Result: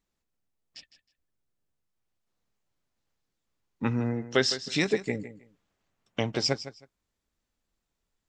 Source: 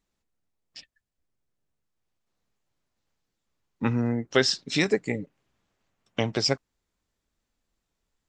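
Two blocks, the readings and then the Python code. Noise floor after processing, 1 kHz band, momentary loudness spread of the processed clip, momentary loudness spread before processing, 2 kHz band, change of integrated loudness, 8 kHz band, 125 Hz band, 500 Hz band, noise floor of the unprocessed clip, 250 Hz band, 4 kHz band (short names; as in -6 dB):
-83 dBFS, -2.5 dB, 12 LU, 11 LU, -2.5 dB, -2.5 dB, -2.5 dB, -2.5 dB, -2.5 dB, -83 dBFS, -2.5 dB, -2.5 dB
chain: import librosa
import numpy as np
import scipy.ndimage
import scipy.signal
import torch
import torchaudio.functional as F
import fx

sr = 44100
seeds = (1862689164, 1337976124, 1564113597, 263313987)

y = fx.echo_feedback(x, sr, ms=158, feedback_pct=20, wet_db=-13.5)
y = F.gain(torch.from_numpy(y), -2.5).numpy()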